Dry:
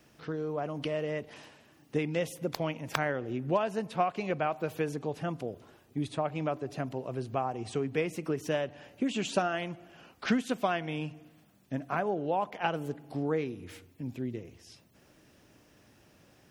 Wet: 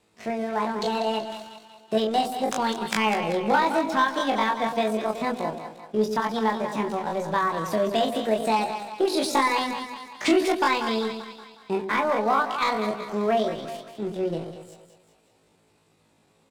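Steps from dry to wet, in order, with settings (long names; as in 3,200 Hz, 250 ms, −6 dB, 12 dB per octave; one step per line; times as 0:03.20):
low-pass filter 8,100 Hz 24 dB per octave
leveller curve on the samples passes 2
double-tracking delay 27 ms −4 dB
echo with a time of its own for lows and highs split 490 Hz, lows 114 ms, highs 189 ms, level −8.5 dB
pitch shifter +6.5 semitones
level −1 dB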